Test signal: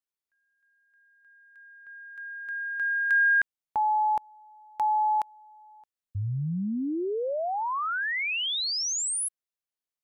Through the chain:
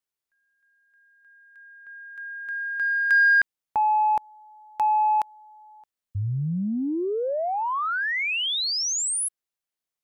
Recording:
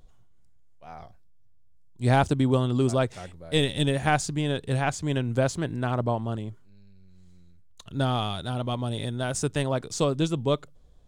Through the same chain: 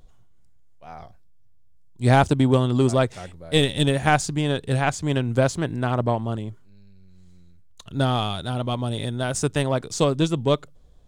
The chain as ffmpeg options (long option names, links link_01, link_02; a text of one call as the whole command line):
ffmpeg -i in.wav -af "aeval=exprs='0.335*(cos(1*acos(clip(val(0)/0.335,-1,1)))-cos(1*PI/2))+0.00841*(cos(7*acos(clip(val(0)/0.335,-1,1)))-cos(7*PI/2))':channel_layout=same,volume=4.5dB" out.wav